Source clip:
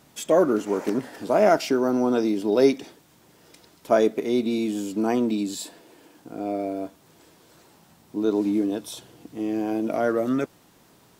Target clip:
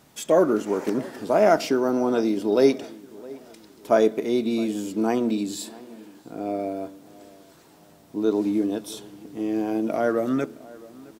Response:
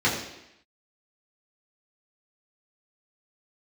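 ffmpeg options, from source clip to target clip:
-filter_complex "[0:a]asplit=2[link_01][link_02];[link_02]adelay=664,lowpass=frequency=2200:poles=1,volume=-21dB,asplit=2[link_03][link_04];[link_04]adelay=664,lowpass=frequency=2200:poles=1,volume=0.45,asplit=2[link_05][link_06];[link_06]adelay=664,lowpass=frequency=2200:poles=1,volume=0.45[link_07];[link_01][link_03][link_05][link_07]amix=inputs=4:normalize=0,asplit=2[link_08][link_09];[1:a]atrim=start_sample=2205,asetrate=38808,aresample=44100[link_10];[link_09][link_10]afir=irnorm=-1:irlink=0,volume=-34dB[link_11];[link_08][link_11]amix=inputs=2:normalize=0"

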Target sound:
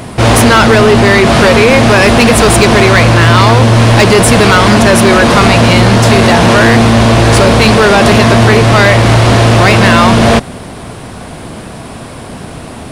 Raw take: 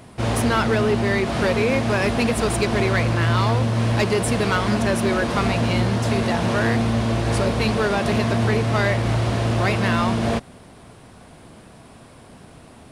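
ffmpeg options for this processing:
ffmpeg -i in.wav -af "apsyclip=21dB,volume=-1.5dB" out.wav

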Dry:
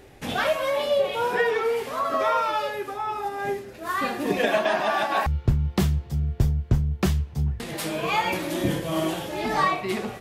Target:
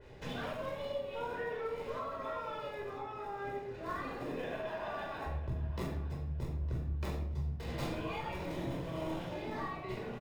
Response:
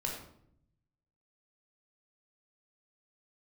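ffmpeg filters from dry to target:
-filter_complex "[0:a]highshelf=frequency=11000:gain=10.5,acrossover=split=6200[link_01][link_02];[link_01]acompressor=threshold=-34dB:ratio=6[link_03];[link_02]acrusher=samples=29:mix=1:aa=0.000001[link_04];[link_03][link_04]amix=inputs=2:normalize=0,asplit=2[link_05][link_06];[link_06]adelay=909,lowpass=frequency=4400:poles=1,volume=-15dB,asplit=2[link_07][link_08];[link_08]adelay=909,lowpass=frequency=4400:poles=1,volume=0.26,asplit=2[link_09][link_10];[link_10]adelay=909,lowpass=frequency=4400:poles=1,volume=0.26[link_11];[link_05][link_07][link_09][link_11]amix=inputs=4:normalize=0[link_12];[1:a]atrim=start_sample=2205[link_13];[link_12][link_13]afir=irnorm=-1:irlink=0,adynamicequalizer=threshold=0.00251:dfrequency=3200:dqfactor=0.7:tfrequency=3200:tqfactor=0.7:attack=5:release=100:ratio=0.375:range=2:mode=cutabove:tftype=highshelf,volume=-7.5dB"

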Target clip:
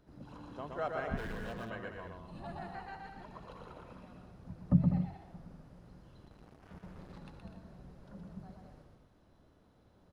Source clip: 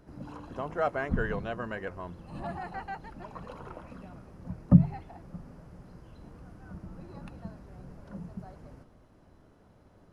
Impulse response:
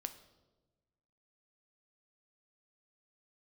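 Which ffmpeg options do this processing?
-filter_complex "[0:a]equalizer=frequency=3700:width=2.5:gain=7,asettb=1/sr,asplit=3[link_01][link_02][link_03];[link_01]atrim=end=6.254[link_04];[link_02]atrim=start=6.25:end=7.18,asetpts=PTS-STARTPTS,afade=type=in:duration=0.004:curve=qsin,afade=type=out:start_time=0.926:duration=0.004:curve=qsin,acrusher=bits=6:mix=0:aa=0.5[link_05];[link_03]atrim=start=7.176[link_06];[link_04][link_05]acrossfade=duration=0.004:curve1=hsin:curve2=qsin[link_07];[link_07][link_06]acrossfade=duration=0.004:curve1=qsin:curve2=hsin,aecho=1:1:120|198|248.7|281.7|303.1:0.631|0.398|0.251|0.158|0.1,asettb=1/sr,asplit=3[link_08][link_09][link_10];[link_08]atrim=end=1.174[link_11];[link_09]atrim=start=1.17:end=1.7,asetpts=PTS-STARTPTS,afade=type=in:duration=0.004:curve=qsin,afade=type=out:start_time=0.526:duration=0.004:curve=qsin,aeval=exprs='0.0335*(cos(1*acos(clip(val(0)/0.0335,-1,1)))-cos(1*PI/2))+0.00237*(cos(7*acos(clip(val(0)/0.0335,-1,1)))-cos(7*PI/2))':channel_layout=same[link_12];[link_10]atrim=start=1.696[link_13];[link_11][link_12]acrossfade=duration=0.004:curve1=hsin:curve2=qsin[link_14];[link_14][link_13]acrossfade=duration=0.004:curve1=qsin:curve2=hsin,volume=-8.5dB"

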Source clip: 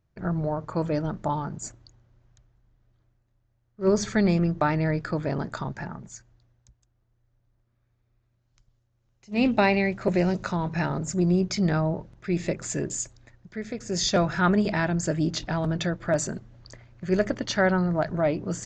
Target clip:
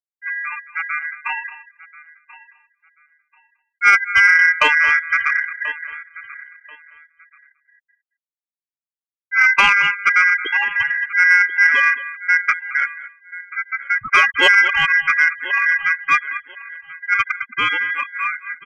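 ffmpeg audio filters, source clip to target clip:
ffmpeg -i in.wav -filter_complex "[0:a]afftfilt=real='re*gte(hypot(re,im),0.2)':imag='im*gte(hypot(re,im),0.2)':win_size=1024:overlap=0.75,dynaudnorm=framelen=190:gausssize=21:maxgain=11dB,asplit=2[link_01][link_02];[link_02]adelay=221.6,volume=-16dB,highshelf=frequency=4000:gain=-4.99[link_03];[link_01][link_03]amix=inputs=2:normalize=0,aeval=exprs='val(0)*sin(2*PI*1500*n/s)':channel_layout=same,asplit=2[link_04][link_05];[link_05]aecho=0:1:1036|2072:0.112|0.0247[link_06];[link_04][link_06]amix=inputs=2:normalize=0,lowpass=frequency=2800:width_type=q:width=0.5098,lowpass=frequency=2800:width_type=q:width=0.6013,lowpass=frequency=2800:width_type=q:width=0.9,lowpass=frequency=2800:width_type=q:width=2.563,afreqshift=-3300,asplit=2[link_07][link_08];[link_08]acontrast=89,volume=2dB[link_09];[link_07][link_09]amix=inputs=2:normalize=0,volume=-7dB" out.wav

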